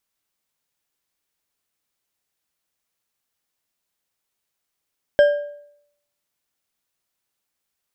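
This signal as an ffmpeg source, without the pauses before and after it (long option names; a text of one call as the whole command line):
ffmpeg -f lavfi -i "aevalsrc='0.422*pow(10,-3*t/0.71)*sin(2*PI*583*t)+0.119*pow(10,-3*t/0.524)*sin(2*PI*1607.3*t)+0.0335*pow(10,-3*t/0.428)*sin(2*PI*3150.5*t)+0.00944*pow(10,-3*t/0.368)*sin(2*PI*5207.9*t)+0.00266*pow(10,-3*t/0.326)*sin(2*PI*7777.2*t)':duration=1.55:sample_rate=44100" out.wav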